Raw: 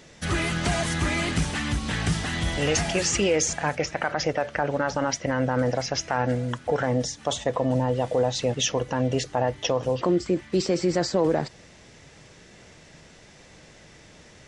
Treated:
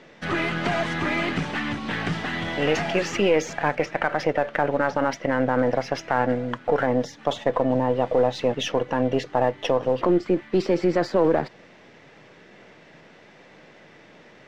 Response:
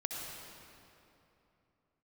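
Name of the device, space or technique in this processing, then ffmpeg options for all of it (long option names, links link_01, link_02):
crystal radio: -af "highpass=200,lowpass=2700,aeval=exprs='if(lt(val(0),0),0.708*val(0),val(0))':channel_layout=same,volume=4.5dB"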